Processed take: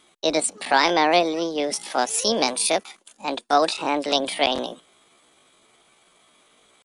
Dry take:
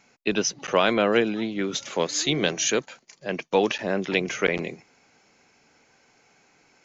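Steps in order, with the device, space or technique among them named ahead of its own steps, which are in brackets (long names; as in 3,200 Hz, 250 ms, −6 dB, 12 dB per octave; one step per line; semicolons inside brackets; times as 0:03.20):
chipmunk voice (pitch shifter +7 semitones)
level +2.5 dB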